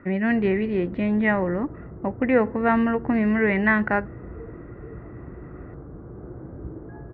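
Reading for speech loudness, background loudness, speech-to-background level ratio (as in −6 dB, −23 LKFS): −22.5 LKFS, −40.5 LKFS, 18.0 dB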